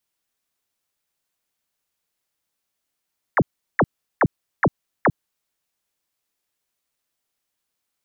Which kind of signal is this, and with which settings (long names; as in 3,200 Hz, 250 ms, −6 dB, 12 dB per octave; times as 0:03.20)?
repeated falling chirps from 2,200 Hz, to 94 Hz, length 0.05 s sine, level −12.5 dB, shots 5, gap 0.37 s